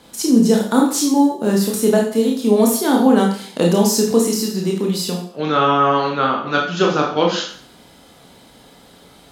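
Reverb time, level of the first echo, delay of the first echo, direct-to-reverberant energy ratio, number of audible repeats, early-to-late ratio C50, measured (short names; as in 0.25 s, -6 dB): 0.50 s, none, none, -1.0 dB, none, 5.0 dB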